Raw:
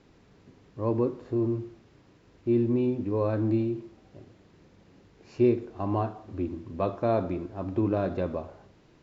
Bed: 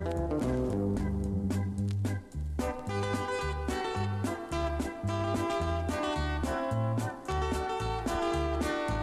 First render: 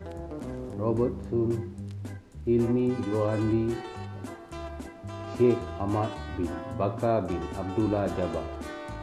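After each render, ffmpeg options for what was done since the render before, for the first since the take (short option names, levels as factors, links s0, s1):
-filter_complex "[1:a]volume=0.473[s0];[0:a][s0]amix=inputs=2:normalize=0"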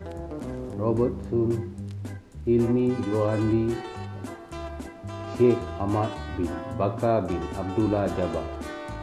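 -af "volume=1.33"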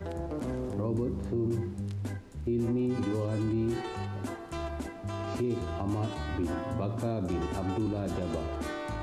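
-filter_complex "[0:a]acrossover=split=350|3000[s0][s1][s2];[s1]acompressor=threshold=0.0224:ratio=6[s3];[s0][s3][s2]amix=inputs=3:normalize=0,alimiter=limit=0.075:level=0:latency=1:release=47"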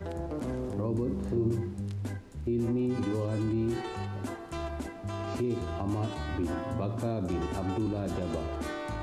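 -filter_complex "[0:a]asettb=1/sr,asplit=3[s0][s1][s2];[s0]atrim=end=1.044[s3];[s1]atrim=start=1.04:end=1.54,asetpts=PTS-STARTPTS,afade=t=in:d=0.004:c=qsin,afade=t=out:st=0.496:d=0.004:c=qsin,asplit=2[s4][s5];[s5]adelay=45,volume=0.631[s6];[s4][s6]amix=inputs=2:normalize=0,atrim=end_sample=22050[s7];[s2]atrim=start=1.536[s8];[s3][s7]acrossfade=d=0.004:c1=hsin:c2=qsin[s9];[s9][s8]acrossfade=d=0.004:c1=qsin:c2=hsin"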